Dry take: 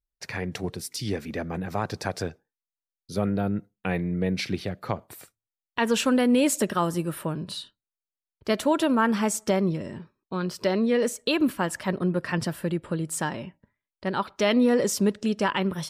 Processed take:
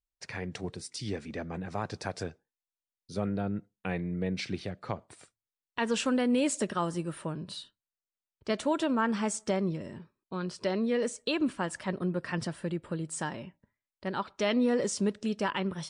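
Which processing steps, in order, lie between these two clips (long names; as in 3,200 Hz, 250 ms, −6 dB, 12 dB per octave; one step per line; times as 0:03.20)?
level −5.5 dB
MP3 56 kbit/s 22,050 Hz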